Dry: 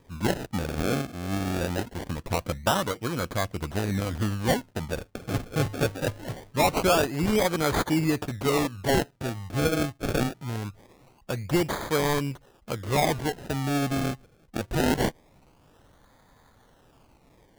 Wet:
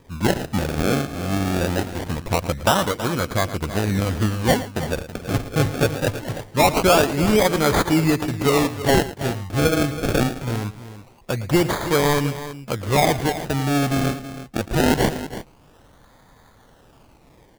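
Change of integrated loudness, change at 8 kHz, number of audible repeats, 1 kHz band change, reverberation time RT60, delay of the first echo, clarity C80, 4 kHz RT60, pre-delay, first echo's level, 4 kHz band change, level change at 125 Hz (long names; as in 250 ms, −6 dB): +6.5 dB, +6.5 dB, 2, +6.5 dB, no reverb audible, 112 ms, no reverb audible, no reverb audible, no reverb audible, −15.0 dB, +6.5 dB, +6.5 dB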